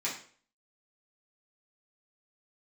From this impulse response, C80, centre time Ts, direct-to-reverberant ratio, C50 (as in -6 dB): 10.5 dB, 29 ms, -8.0 dB, 6.5 dB